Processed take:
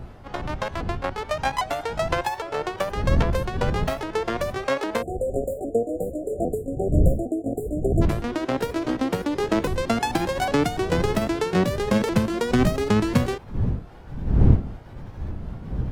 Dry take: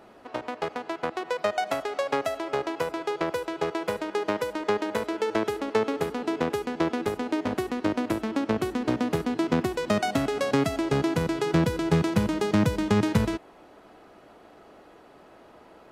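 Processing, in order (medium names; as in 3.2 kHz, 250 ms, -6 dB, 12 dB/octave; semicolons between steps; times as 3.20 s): sawtooth pitch modulation +5.5 st, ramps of 806 ms; wind noise 120 Hz -30 dBFS; spectral selection erased 5.02–8.02 s, 760–6900 Hz; trim +3 dB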